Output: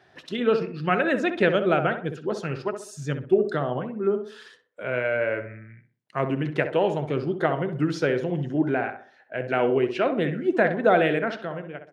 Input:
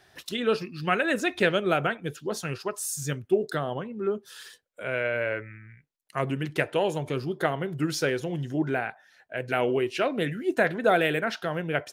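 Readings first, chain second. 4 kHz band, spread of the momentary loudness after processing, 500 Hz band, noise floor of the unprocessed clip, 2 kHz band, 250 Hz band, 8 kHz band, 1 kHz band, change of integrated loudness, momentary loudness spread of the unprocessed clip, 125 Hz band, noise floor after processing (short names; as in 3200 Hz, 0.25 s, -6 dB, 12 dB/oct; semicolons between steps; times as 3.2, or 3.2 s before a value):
-3.0 dB, 12 LU, +3.5 dB, -62 dBFS, +0.5 dB, +4.0 dB, under -10 dB, +2.5 dB, +3.0 dB, 10 LU, +2.5 dB, -59 dBFS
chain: ending faded out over 0.79 s; HPF 110 Hz; tape spacing loss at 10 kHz 21 dB; tape echo 64 ms, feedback 43%, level -7 dB, low-pass 1500 Hz; gain +4 dB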